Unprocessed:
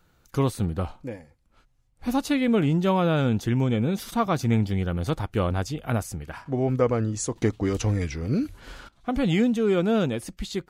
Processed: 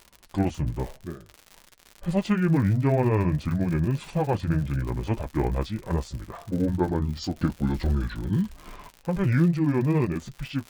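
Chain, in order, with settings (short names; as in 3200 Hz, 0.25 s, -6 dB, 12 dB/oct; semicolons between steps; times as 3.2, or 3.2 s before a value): delay-line pitch shifter -6 st; high shelf 4300 Hz -10.5 dB; crackle 100/s -33 dBFS; flange 0.5 Hz, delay 4.9 ms, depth 2.6 ms, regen -58%; gain +5 dB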